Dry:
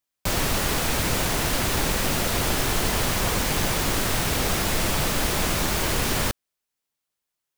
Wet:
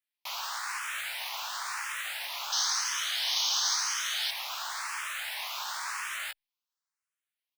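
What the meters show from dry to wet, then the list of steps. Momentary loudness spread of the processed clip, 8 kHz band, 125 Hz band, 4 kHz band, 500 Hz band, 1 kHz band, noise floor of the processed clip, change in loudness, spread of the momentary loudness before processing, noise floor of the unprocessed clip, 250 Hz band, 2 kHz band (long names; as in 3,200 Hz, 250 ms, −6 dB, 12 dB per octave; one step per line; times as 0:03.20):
9 LU, −6.0 dB, below −40 dB, −3.0 dB, −27.0 dB, −8.5 dB, below −85 dBFS, −7.5 dB, 1 LU, −84 dBFS, below −40 dB, −7.0 dB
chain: phase distortion by the signal itself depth 0.12 ms
inverse Chebyshev high-pass filter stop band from 460 Hz, stop band 40 dB
high-shelf EQ 5,400 Hz −7.5 dB
in parallel at +1 dB: brickwall limiter −24.5 dBFS, peak gain reduction 6.5 dB
on the sum: double-tracking delay 16 ms −6 dB
sound drawn into the spectrogram noise, 0:02.52–0:04.31, 2,900–6,600 Hz −20 dBFS
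frequency shifter mixed with the dry sound +0.96 Hz
level −8 dB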